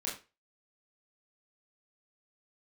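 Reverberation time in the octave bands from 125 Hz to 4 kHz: 0.30 s, 0.30 s, 0.30 s, 0.30 s, 0.30 s, 0.25 s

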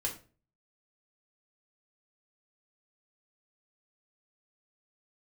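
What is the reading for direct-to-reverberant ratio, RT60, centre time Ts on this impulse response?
-1.5 dB, 0.35 s, 16 ms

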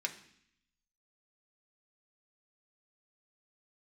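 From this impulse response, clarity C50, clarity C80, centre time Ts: 12.5 dB, 15.5 dB, 10 ms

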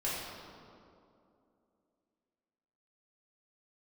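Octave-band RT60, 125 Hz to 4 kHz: 2.4 s, 3.2 s, 2.9 s, 2.4 s, 1.6 s, 1.4 s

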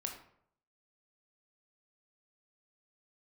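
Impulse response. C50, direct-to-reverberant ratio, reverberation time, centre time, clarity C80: 6.5 dB, 1.5 dB, 0.65 s, 24 ms, 10.5 dB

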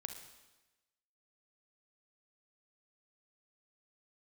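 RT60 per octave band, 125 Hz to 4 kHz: 1.1 s, 1.1 s, 1.1 s, 1.1 s, 1.1 s, 1.1 s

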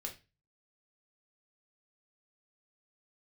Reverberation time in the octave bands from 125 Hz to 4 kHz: 0.55 s, 0.35 s, 0.30 s, 0.25 s, 0.30 s, 0.30 s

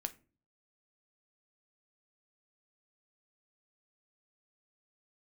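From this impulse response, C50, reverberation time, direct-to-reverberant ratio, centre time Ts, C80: 18.5 dB, 0.35 s, 8.5 dB, 4 ms, 24.5 dB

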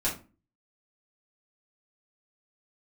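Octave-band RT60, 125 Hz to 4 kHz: 0.50 s, 0.50 s, 0.35 s, 0.30 s, 0.25 s, 0.20 s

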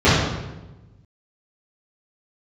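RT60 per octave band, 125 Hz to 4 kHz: 1.7 s, 1.4 s, 1.2 s, 1.0 s, 0.90 s, 0.75 s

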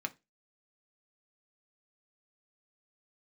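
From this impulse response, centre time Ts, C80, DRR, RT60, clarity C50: 3 ms, 30.0 dB, 5.0 dB, 0.25 s, 22.0 dB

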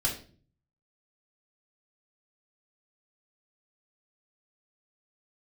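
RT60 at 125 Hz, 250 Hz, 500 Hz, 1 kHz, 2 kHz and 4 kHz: 0.90 s, 0.65 s, 0.50 s, 0.35 s, 0.35 s, 0.35 s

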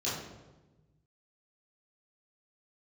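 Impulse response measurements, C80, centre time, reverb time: 4.5 dB, 65 ms, 1.2 s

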